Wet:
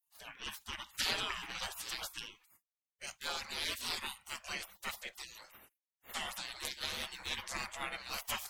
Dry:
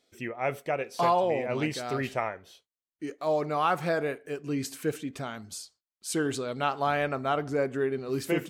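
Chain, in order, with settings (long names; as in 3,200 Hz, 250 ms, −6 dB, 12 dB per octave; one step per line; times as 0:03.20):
harmonic generator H 2 −18 dB, 4 −23 dB, 6 −22 dB, 8 −30 dB, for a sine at −12.5 dBFS
gate on every frequency bin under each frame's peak −30 dB weak
level +11 dB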